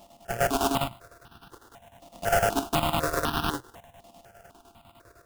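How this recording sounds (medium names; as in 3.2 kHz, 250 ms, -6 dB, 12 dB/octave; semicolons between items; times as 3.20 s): a buzz of ramps at a fixed pitch in blocks of 64 samples; chopped level 9.9 Hz, depth 65%, duty 65%; aliases and images of a low sample rate 2.2 kHz, jitter 20%; notches that jump at a steady rate 4 Hz 410–2100 Hz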